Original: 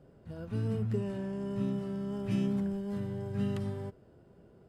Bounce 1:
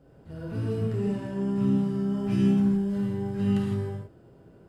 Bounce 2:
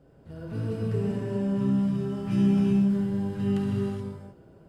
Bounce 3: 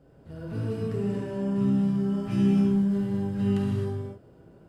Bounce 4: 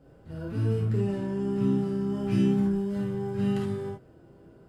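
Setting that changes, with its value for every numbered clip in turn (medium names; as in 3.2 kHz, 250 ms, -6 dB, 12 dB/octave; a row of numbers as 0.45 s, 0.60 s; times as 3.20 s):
gated-style reverb, gate: 190 ms, 450 ms, 290 ms, 100 ms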